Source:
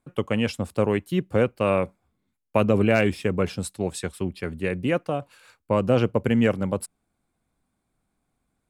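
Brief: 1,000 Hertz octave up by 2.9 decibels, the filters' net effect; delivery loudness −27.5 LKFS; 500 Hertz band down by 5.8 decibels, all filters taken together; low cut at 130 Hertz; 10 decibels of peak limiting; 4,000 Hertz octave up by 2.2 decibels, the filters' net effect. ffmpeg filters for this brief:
ffmpeg -i in.wav -af "highpass=130,equalizer=frequency=500:width_type=o:gain=-8.5,equalizer=frequency=1000:width_type=o:gain=6,equalizer=frequency=4000:width_type=o:gain=3,volume=3dB,alimiter=limit=-14dB:level=0:latency=1" out.wav

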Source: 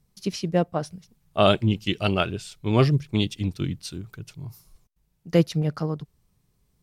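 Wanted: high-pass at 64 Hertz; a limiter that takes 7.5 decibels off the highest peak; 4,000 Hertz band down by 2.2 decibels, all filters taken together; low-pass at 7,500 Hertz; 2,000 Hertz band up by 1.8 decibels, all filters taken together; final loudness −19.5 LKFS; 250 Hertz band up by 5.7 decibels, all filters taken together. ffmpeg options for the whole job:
ffmpeg -i in.wav -af "highpass=64,lowpass=7500,equalizer=frequency=250:width_type=o:gain=8.5,equalizer=frequency=2000:width_type=o:gain=5,equalizer=frequency=4000:width_type=o:gain=-5.5,volume=4dB,alimiter=limit=-4.5dB:level=0:latency=1" out.wav

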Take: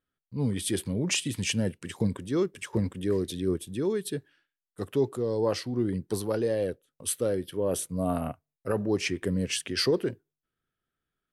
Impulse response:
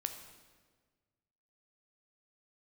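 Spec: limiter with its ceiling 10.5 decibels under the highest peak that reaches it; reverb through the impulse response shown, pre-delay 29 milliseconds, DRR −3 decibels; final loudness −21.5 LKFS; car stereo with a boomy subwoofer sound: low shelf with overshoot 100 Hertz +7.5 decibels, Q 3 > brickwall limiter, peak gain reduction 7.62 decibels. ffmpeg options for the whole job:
-filter_complex "[0:a]alimiter=level_in=0.5dB:limit=-24dB:level=0:latency=1,volume=-0.5dB,asplit=2[link_01][link_02];[1:a]atrim=start_sample=2205,adelay=29[link_03];[link_02][link_03]afir=irnorm=-1:irlink=0,volume=3dB[link_04];[link_01][link_04]amix=inputs=2:normalize=0,lowshelf=frequency=100:width_type=q:width=3:gain=7.5,volume=11.5dB,alimiter=limit=-12.5dB:level=0:latency=1"

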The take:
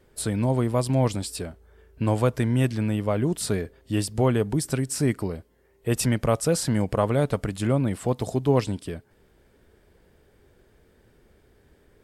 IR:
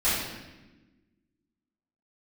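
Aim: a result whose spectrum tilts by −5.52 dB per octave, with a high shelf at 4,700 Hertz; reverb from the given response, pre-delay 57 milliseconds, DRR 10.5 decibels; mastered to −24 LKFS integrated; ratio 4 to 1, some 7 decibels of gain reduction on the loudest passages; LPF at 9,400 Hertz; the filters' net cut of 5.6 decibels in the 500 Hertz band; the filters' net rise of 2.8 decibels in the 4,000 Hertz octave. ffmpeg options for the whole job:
-filter_complex "[0:a]lowpass=9400,equalizer=frequency=500:width_type=o:gain=-7,equalizer=frequency=4000:width_type=o:gain=7,highshelf=frequency=4700:gain=-5.5,acompressor=threshold=-27dB:ratio=4,asplit=2[link_01][link_02];[1:a]atrim=start_sample=2205,adelay=57[link_03];[link_02][link_03]afir=irnorm=-1:irlink=0,volume=-24dB[link_04];[link_01][link_04]amix=inputs=2:normalize=0,volume=8dB"

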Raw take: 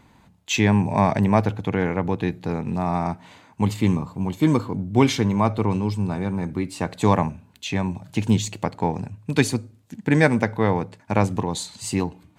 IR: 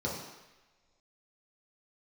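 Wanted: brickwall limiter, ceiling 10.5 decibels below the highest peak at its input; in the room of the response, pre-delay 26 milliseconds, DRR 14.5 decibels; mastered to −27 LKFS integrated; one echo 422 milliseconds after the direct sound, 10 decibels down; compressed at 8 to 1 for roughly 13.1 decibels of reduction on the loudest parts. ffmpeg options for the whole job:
-filter_complex "[0:a]acompressor=threshold=-26dB:ratio=8,alimiter=limit=-22dB:level=0:latency=1,aecho=1:1:422:0.316,asplit=2[link_01][link_02];[1:a]atrim=start_sample=2205,adelay=26[link_03];[link_02][link_03]afir=irnorm=-1:irlink=0,volume=-20.5dB[link_04];[link_01][link_04]amix=inputs=2:normalize=0,volume=6dB"

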